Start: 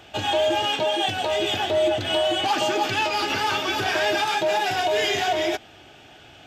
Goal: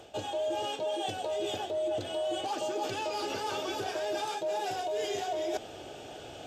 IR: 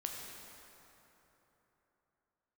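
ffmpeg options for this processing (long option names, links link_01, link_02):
-af "equalizer=frequency=500:width_type=o:width=1:gain=11,equalizer=frequency=2000:width_type=o:width=1:gain=-6,equalizer=frequency=8000:width_type=o:width=1:gain=7,areverse,acompressor=threshold=-34dB:ratio=4,areverse"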